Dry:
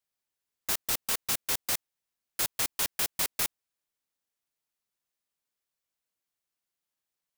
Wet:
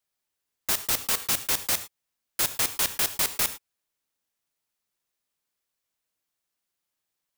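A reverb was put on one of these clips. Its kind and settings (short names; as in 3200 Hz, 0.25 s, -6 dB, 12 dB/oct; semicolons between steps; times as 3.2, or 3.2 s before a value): non-linear reverb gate 0.13 s flat, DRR 11 dB; gain +4 dB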